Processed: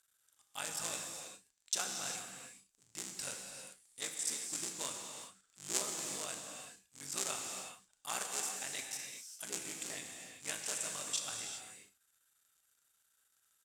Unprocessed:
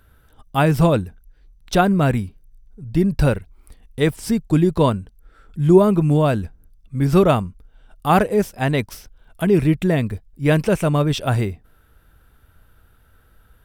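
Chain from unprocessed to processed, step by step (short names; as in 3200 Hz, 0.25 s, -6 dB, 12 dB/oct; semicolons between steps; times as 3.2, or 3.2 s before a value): cycle switcher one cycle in 3, muted; band-pass 7400 Hz, Q 3.7; doubler 36 ms -13 dB; non-linear reverb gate 0.43 s flat, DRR 2 dB; gain +4.5 dB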